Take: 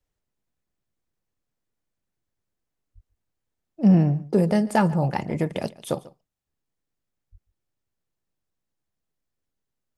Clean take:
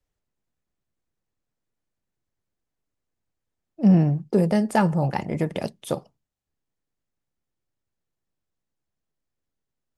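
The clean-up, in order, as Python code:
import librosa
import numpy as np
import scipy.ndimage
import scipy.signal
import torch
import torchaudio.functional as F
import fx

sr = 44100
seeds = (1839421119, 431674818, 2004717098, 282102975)

y = fx.highpass(x, sr, hz=140.0, slope=24, at=(2.94, 3.06), fade=0.02)
y = fx.highpass(y, sr, hz=140.0, slope=24, at=(7.31, 7.43), fade=0.02)
y = fx.fix_echo_inverse(y, sr, delay_ms=143, level_db=-20.5)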